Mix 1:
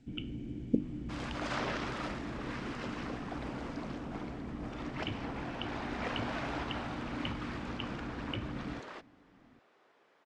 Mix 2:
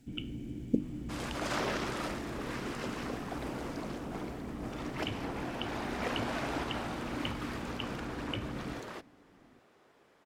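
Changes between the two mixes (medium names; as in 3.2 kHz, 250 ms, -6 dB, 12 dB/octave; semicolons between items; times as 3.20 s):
second sound: remove high-pass 520 Hz 6 dB/octave; master: remove distance through air 99 m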